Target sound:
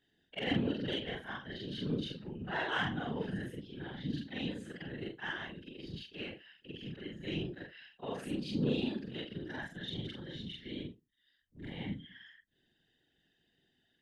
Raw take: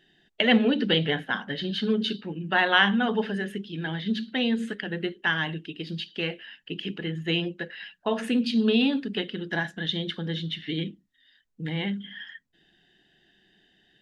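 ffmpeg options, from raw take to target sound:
ffmpeg -i in.wav -filter_complex "[0:a]afftfilt=real='re':imag='-im':win_size=4096:overlap=0.75,bass=frequency=250:gain=2,treble=frequency=4000:gain=4,asplit=2[link_01][link_02];[link_02]asoftclip=type=tanh:threshold=-21.5dB,volume=-6.5dB[link_03];[link_01][link_03]amix=inputs=2:normalize=0,equalizer=frequency=3100:width=0.33:gain=-2.5,afftfilt=real='hypot(re,im)*cos(2*PI*random(0))':imag='hypot(re,im)*sin(2*PI*random(1))':win_size=512:overlap=0.75,volume=-4.5dB" out.wav

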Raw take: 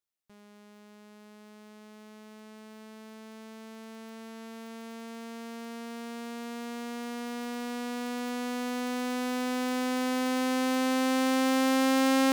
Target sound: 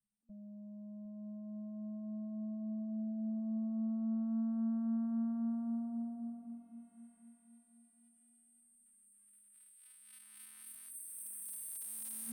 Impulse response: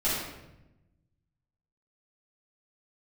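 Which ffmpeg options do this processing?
-filter_complex "[0:a]afftfilt=real='re*(1-between(b*sr/4096,230,8300))':imag='im*(1-between(b*sr/4096,230,8300))':win_size=4096:overlap=0.75,anlmdn=0.0251,highshelf=frequency=3200:gain=-12,acrossover=split=1200|4000[link_01][link_02][link_03];[link_02]acompressor=mode=upward:threshold=-44dB:ratio=2.5[link_04];[link_01][link_04][link_03]amix=inputs=3:normalize=0,asoftclip=type=hard:threshold=-39.5dB,asplit=2[link_05][link_06];[link_06]aecho=0:1:757|1514|2271:0.168|0.0588|0.0206[link_07];[link_05][link_07]amix=inputs=2:normalize=0,volume=11.5dB"

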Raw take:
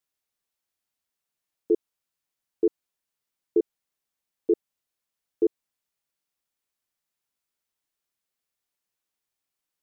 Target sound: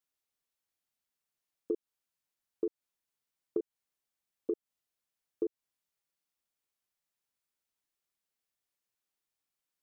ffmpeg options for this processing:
ffmpeg -i in.wav -af "acompressor=threshold=-26dB:ratio=6,volume=-4dB" out.wav

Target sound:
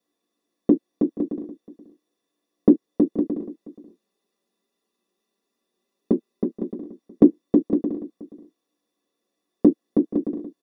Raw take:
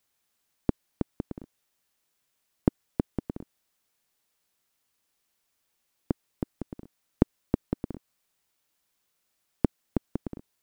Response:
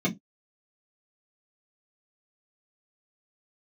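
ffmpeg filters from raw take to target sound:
-filter_complex "[0:a]asettb=1/sr,asplit=3[link_01][link_02][link_03];[link_01]atrim=end=3.374[link_04];[link_02]atrim=start=3.37:end=6.78,asetpts=PTS-STARTPTS,afade=type=in:duration=0.004:curve=qsin,afade=type=out:start_time=3.406:duration=0.004:curve=qsin,aecho=1:1:5:0.51,atrim=end_sample=150381[link_05];[link_03]atrim=start=6.776[link_06];[link_04][link_05]acrossfade=duration=0.004:curve1=hsin:curve2=qsin[link_07];[link_07][link_06]acrossfade=duration=0.004:curve1=qsin:curve2=hsin,asplit=2[link_08][link_09];[link_09]adelay=478.1,volume=-18dB,highshelf=frequency=4000:gain=-10.8[link_10];[link_08][link_10]amix=inputs=2:normalize=0[link_11];[1:a]atrim=start_sample=2205,asetrate=70560,aresample=44100[link_12];[link_11][link_12]afir=irnorm=-1:irlink=0,volume=-7dB"

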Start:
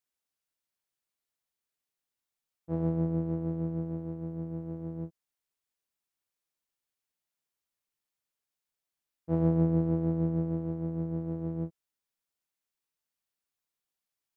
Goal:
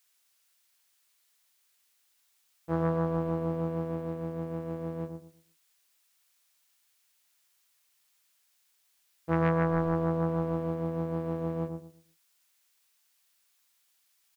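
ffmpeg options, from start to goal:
ffmpeg -i in.wav -filter_complex "[0:a]aeval=exprs='0.168*(cos(1*acos(clip(val(0)/0.168,-1,1)))-cos(1*PI/2))+0.0237*(cos(5*acos(clip(val(0)/0.168,-1,1)))-cos(5*PI/2))':channel_layout=same,tiltshelf=frequency=740:gain=-9,asplit=2[link_01][link_02];[link_02]adelay=117,lowpass=frequency=970:poles=1,volume=-5.5dB,asplit=2[link_03][link_04];[link_04]adelay=117,lowpass=frequency=970:poles=1,volume=0.28,asplit=2[link_05][link_06];[link_06]adelay=117,lowpass=frequency=970:poles=1,volume=0.28,asplit=2[link_07][link_08];[link_08]adelay=117,lowpass=frequency=970:poles=1,volume=0.28[link_09];[link_01][link_03][link_05][link_07][link_09]amix=inputs=5:normalize=0,volume=5dB" out.wav

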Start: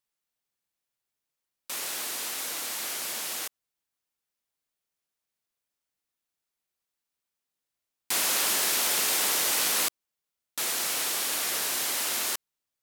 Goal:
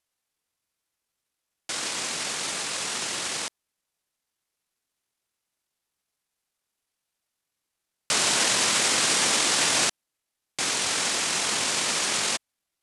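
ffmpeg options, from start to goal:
ffmpeg -i in.wav -af "asetrate=26222,aresample=44100,atempo=1.68179,volume=4dB" out.wav

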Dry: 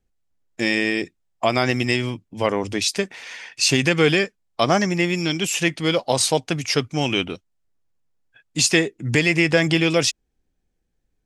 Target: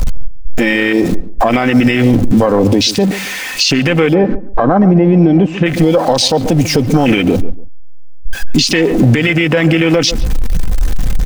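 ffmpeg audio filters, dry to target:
ffmpeg -i in.wav -filter_complex "[0:a]aeval=exprs='val(0)+0.5*0.0794*sgn(val(0))':channel_layout=same,asplit=3[link_01][link_02][link_03];[link_01]afade=type=out:start_time=4.13:duration=0.02[link_04];[link_02]lowpass=1600,afade=type=in:start_time=4.13:duration=0.02,afade=type=out:start_time=5.65:duration=0.02[link_05];[link_03]afade=type=in:start_time=5.65:duration=0.02[link_06];[link_04][link_05][link_06]amix=inputs=3:normalize=0,afwtdn=0.0891,equalizer=frequency=70:width_type=o:width=0.77:gain=-6.5,aecho=1:1:3.9:0.34,acompressor=threshold=-24dB:ratio=3,asplit=2[link_07][link_08];[link_08]adelay=140,lowpass=frequency=1100:poles=1,volume=-16dB,asplit=2[link_09][link_10];[link_10]adelay=140,lowpass=frequency=1100:poles=1,volume=0.24[link_11];[link_07][link_09][link_11]amix=inputs=3:normalize=0,alimiter=level_in=20.5dB:limit=-1dB:release=50:level=0:latency=1,volume=-1dB" out.wav

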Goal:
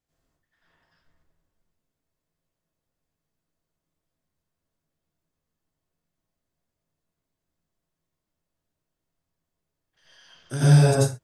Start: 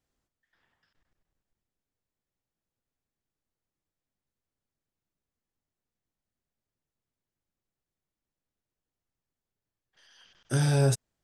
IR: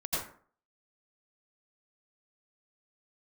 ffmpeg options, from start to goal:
-filter_complex "[1:a]atrim=start_sample=2205,afade=type=out:start_time=0.28:duration=0.01,atrim=end_sample=12789,asetrate=43218,aresample=44100[link_01];[0:a][link_01]afir=irnorm=-1:irlink=0"

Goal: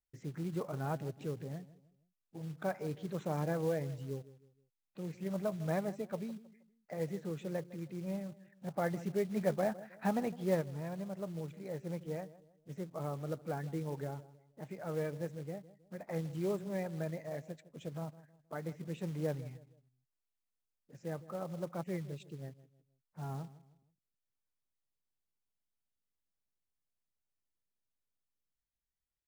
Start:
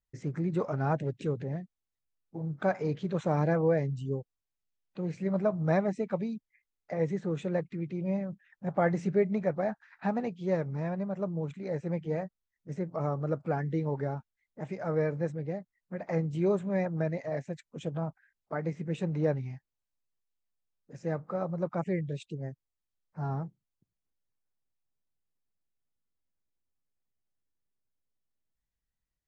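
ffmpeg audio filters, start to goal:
ffmpeg -i in.wav -filter_complex "[0:a]asplit=2[link_01][link_02];[link_02]adelay=158,lowpass=frequency=1200:poles=1,volume=-16.5dB,asplit=2[link_03][link_04];[link_04]adelay=158,lowpass=frequency=1200:poles=1,volume=0.38,asplit=2[link_05][link_06];[link_06]adelay=158,lowpass=frequency=1200:poles=1,volume=0.38[link_07];[link_01][link_03][link_05][link_07]amix=inputs=4:normalize=0,asplit=3[link_08][link_09][link_10];[link_08]afade=type=out:start_time=9.36:duration=0.02[link_11];[link_09]acontrast=37,afade=type=in:start_time=9.36:duration=0.02,afade=type=out:start_time=10.6:duration=0.02[link_12];[link_10]afade=type=in:start_time=10.6:duration=0.02[link_13];[link_11][link_12][link_13]amix=inputs=3:normalize=0,acrusher=bits=5:mode=log:mix=0:aa=0.000001,volume=-8dB" out.wav

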